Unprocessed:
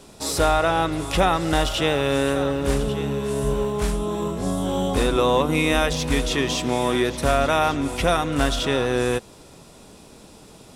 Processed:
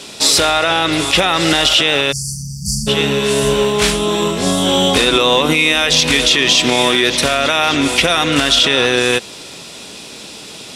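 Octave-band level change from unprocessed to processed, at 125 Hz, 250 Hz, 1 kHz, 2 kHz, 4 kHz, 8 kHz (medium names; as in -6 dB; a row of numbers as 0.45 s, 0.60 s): +2.5 dB, +5.5 dB, +5.0 dB, +12.0 dB, +16.5 dB, +13.5 dB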